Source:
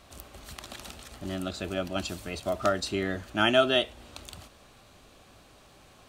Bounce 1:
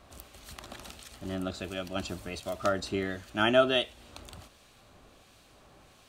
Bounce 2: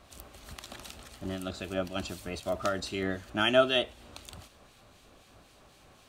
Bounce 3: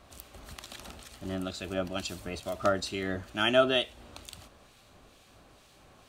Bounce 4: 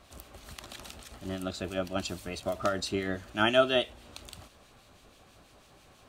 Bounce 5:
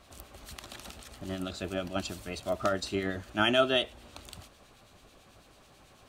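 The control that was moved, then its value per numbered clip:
two-band tremolo in antiphase, speed: 1.4, 3.9, 2.2, 6.1, 9.1 Hertz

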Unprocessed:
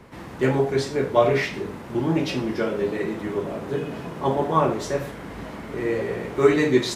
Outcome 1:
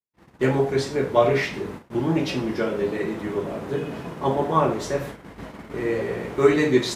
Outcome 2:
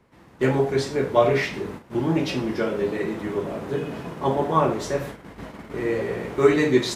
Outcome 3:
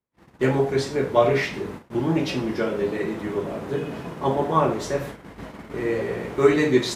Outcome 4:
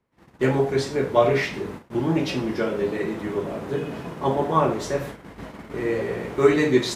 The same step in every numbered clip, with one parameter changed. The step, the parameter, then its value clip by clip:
noise gate, range: −58, −13, −42, −28 decibels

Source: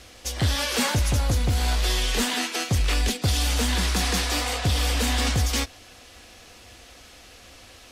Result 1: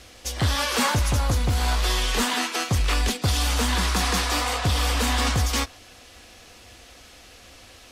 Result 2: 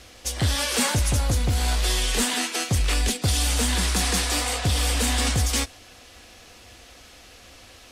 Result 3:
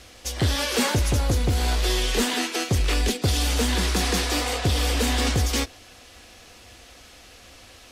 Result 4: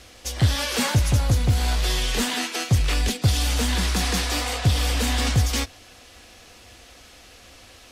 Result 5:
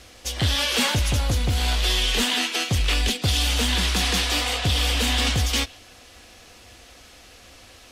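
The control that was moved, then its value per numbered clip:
dynamic equaliser, frequency: 1,100, 8,900, 380, 120, 3,100 Hertz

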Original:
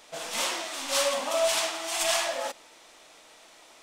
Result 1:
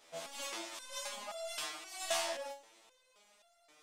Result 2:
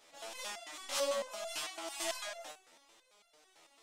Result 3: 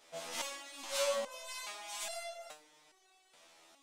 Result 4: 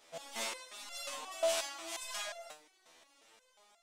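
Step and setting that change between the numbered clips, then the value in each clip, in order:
step-sequenced resonator, speed: 3.8, 9, 2.4, 5.6 Hertz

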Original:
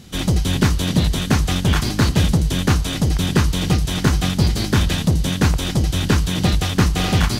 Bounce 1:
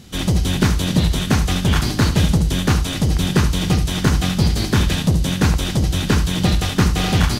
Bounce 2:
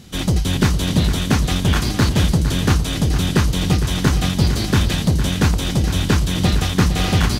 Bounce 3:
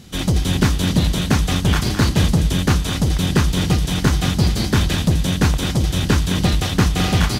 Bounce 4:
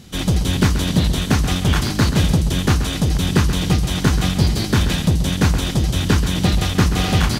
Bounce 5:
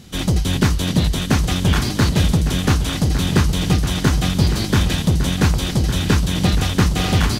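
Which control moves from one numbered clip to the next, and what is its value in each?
single-tap delay, delay time: 71, 459, 211, 131, 1,157 milliseconds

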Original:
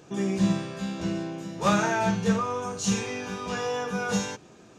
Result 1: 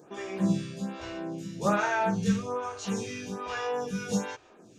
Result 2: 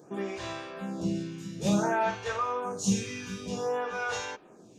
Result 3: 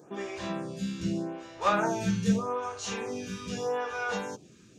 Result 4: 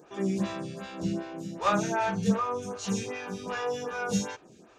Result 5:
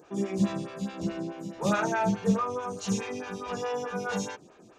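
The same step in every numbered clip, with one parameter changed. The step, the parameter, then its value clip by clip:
phaser with staggered stages, speed: 1.2, 0.55, 0.82, 2.6, 4.7 Hertz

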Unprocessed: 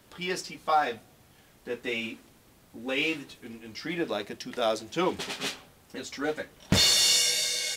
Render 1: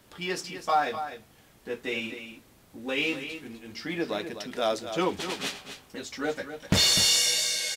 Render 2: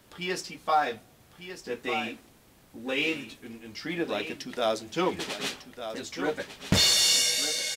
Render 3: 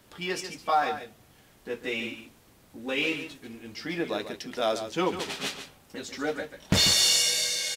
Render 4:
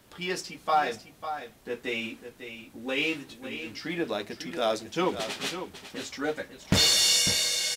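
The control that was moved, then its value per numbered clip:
single-tap delay, delay time: 251, 1,200, 142, 549 milliseconds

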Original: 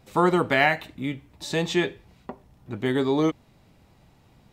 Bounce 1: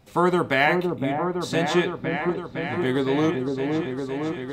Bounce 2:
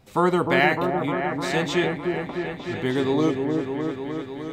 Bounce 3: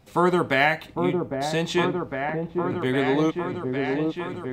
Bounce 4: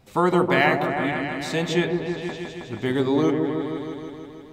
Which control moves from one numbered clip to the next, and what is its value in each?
echo whose low-pass opens from repeat to repeat, delay time: 511, 304, 806, 159 milliseconds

